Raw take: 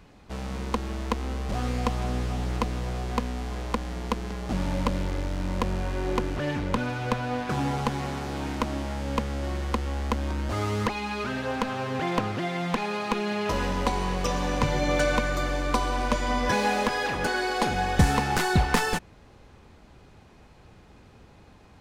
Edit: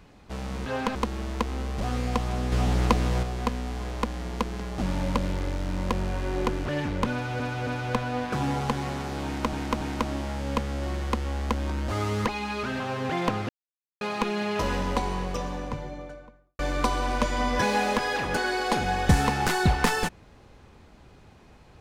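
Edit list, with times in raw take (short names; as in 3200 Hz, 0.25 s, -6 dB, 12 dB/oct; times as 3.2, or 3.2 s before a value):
2.23–2.94 gain +5.5 dB
6.84–7.11 loop, 3 plays
8.42–8.7 loop, 3 plays
11.41–11.7 move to 0.66
12.39–12.91 mute
13.53–15.49 studio fade out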